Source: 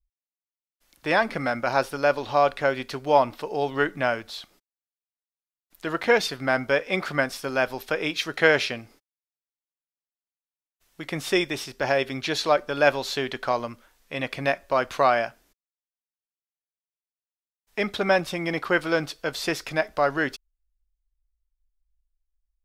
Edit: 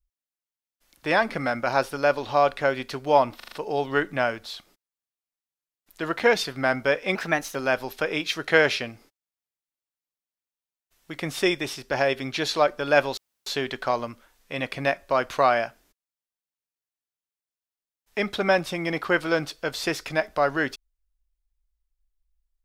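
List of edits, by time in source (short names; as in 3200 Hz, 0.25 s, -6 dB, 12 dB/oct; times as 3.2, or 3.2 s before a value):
3.36 stutter 0.04 s, 5 plays
6.99–7.45 speed 114%
13.07 insert room tone 0.29 s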